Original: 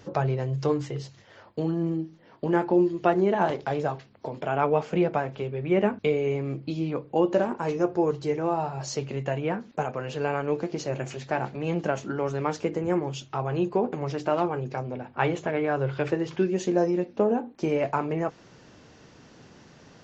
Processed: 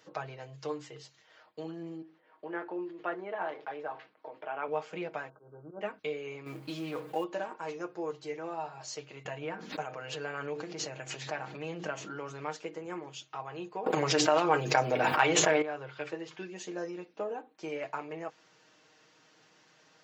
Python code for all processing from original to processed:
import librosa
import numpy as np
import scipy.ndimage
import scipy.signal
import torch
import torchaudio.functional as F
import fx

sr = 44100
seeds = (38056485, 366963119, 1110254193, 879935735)

y = fx.chain(x, sr, fx.bandpass_edges(low_hz=260.0, high_hz=2200.0),
    fx.sustainer(db_per_s=130.0), at=(2.02, 4.68))
y = fx.chain(y, sr, fx.auto_swell(attack_ms=127.0),
    fx.brickwall_lowpass(high_hz=1600.0), at=(5.29, 5.81))
y = fx.chain(y, sr, fx.law_mismatch(coded='mu'),
    fx.env_flatten(amount_pct=50), at=(6.46, 7.24))
y = fx.chain(y, sr, fx.low_shelf(hz=140.0, db=10.0),
    fx.hum_notches(base_hz=60, count=6),
    fx.pre_swell(db_per_s=24.0), at=(9.25, 12.55))
y = fx.chain(y, sr, fx.high_shelf(hz=6400.0, db=9.0),
    fx.transient(attack_db=9, sustain_db=2),
    fx.env_flatten(amount_pct=100), at=(13.86, 15.62))
y = fx.highpass(y, sr, hz=1100.0, slope=6)
y = fx.peak_eq(y, sr, hz=5600.0, db=-2.0, octaves=0.37)
y = y + 0.58 * np.pad(y, (int(6.4 * sr / 1000.0), 0))[:len(y)]
y = y * 10.0 ** (-6.0 / 20.0)